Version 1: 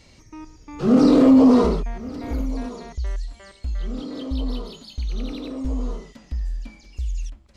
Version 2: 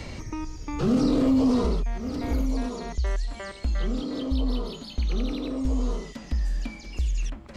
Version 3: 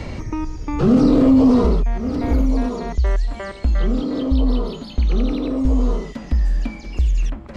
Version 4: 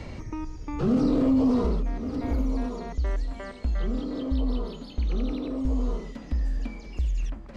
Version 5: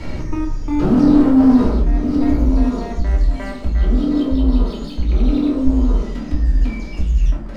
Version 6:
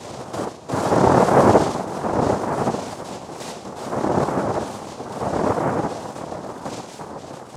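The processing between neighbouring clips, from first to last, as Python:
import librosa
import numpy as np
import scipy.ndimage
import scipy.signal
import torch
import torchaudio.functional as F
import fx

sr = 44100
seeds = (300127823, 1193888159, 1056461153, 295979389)

y1 = fx.band_squash(x, sr, depth_pct=70)
y2 = fx.high_shelf(y1, sr, hz=2800.0, db=-10.5)
y2 = y2 * librosa.db_to_amplitude(8.5)
y3 = y2 + 10.0 ** (-17.0 / 20.0) * np.pad(y2, (int(881 * sr / 1000.0), 0))[:len(y2)]
y3 = y3 * librosa.db_to_amplitude(-9.0)
y4 = fx.leveller(y3, sr, passes=2)
y4 = fx.room_shoebox(y4, sr, seeds[0], volume_m3=300.0, walls='furnished', distance_m=2.8)
y4 = y4 * librosa.db_to_amplitude(-2.5)
y5 = fx.noise_vocoder(y4, sr, seeds[1], bands=2)
y5 = fx.wow_flutter(y5, sr, seeds[2], rate_hz=2.1, depth_cents=110.0)
y5 = y5 * librosa.db_to_amplitude(-3.5)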